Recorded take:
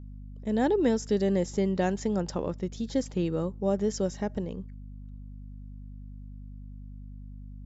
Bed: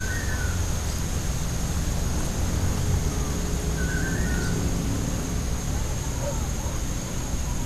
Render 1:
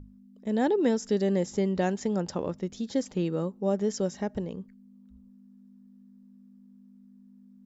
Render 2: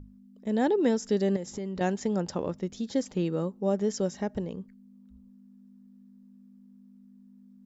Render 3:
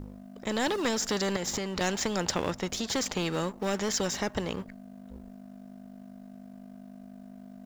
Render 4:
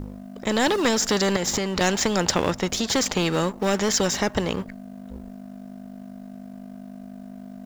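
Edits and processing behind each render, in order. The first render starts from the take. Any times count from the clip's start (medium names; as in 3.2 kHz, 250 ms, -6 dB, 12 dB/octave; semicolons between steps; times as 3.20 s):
hum notches 50/100/150 Hz
1.36–1.81 s: compression, threshold -31 dBFS
waveshaping leveller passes 1; spectrum-flattening compressor 2:1
trim +7.5 dB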